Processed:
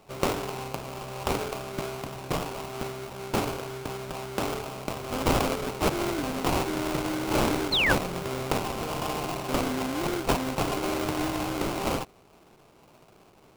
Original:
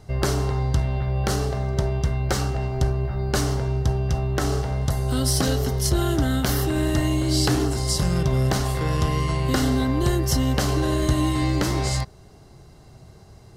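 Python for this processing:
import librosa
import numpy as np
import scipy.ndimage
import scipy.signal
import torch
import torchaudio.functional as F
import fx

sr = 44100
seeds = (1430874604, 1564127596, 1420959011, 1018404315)

y = scipy.signal.sosfilt(scipy.signal.butter(2, 220.0, 'highpass', fs=sr, output='sos'), x)
y = fx.tilt_eq(y, sr, slope=2.0)
y = fx.sample_hold(y, sr, seeds[0], rate_hz=1800.0, jitter_pct=20)
y = fx.spec_paint(y, sr, seeds[1], shape='fall', start_s=7.72, length_s=0.21, low_hz=1400.0, high_hz=4400.0, level_db=-21.0)
y = F.gain(torch.from_numpy(y), -2.5).numpy()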